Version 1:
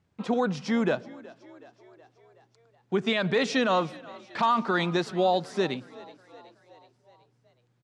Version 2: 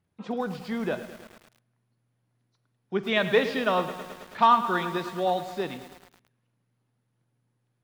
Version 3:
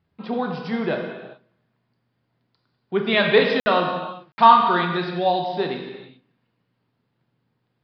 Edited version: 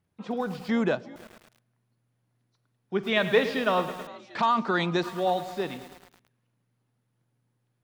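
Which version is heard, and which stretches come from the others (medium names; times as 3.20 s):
2
0.69–1.16 s: from 1
4.07–5.03 s: from 1
not used: 3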